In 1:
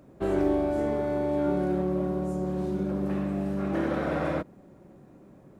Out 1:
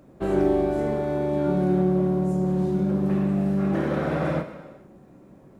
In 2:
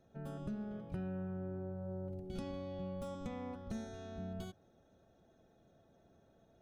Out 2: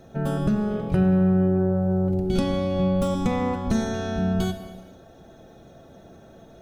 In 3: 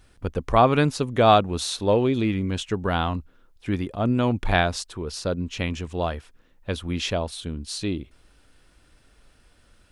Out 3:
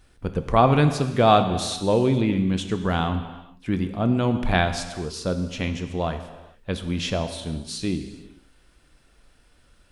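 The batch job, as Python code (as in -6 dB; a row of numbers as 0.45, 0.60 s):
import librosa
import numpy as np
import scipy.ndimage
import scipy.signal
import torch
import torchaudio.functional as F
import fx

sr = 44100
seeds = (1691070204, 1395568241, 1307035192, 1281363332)

y = fx.rev_gated(x, sr, seeds[0], gate_ms=480, shape='falling', drr_db=7.5)
y = fx.dynamic_eq(y, sr, hz=160.0, q=1.4, threshold_db=-38.0, ratio=4.0, max_db=6)
y = y * 10.0 ** (-24 / 20.0) / np.sqrt(np.mean(np.square(y)))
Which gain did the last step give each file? +1.5, +19.0, -1.0 dB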